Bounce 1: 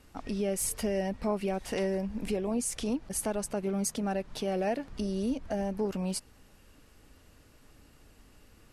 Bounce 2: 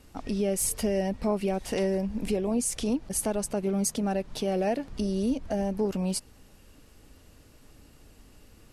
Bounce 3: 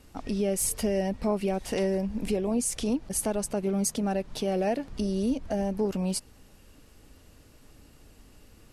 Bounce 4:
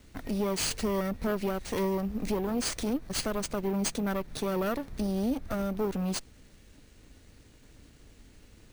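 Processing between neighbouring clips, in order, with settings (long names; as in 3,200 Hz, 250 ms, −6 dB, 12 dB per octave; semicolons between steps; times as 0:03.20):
parametric band 1,500 Hz −4 dB 1.7 octaves; level +4 dB
no processing that can be heard
lower of the sound and its delayed copy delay 0.51 ms; bad sample-rate conversion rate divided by 3×, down none, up hold; soft clipping −19.5 dBFS, distortion −22 dB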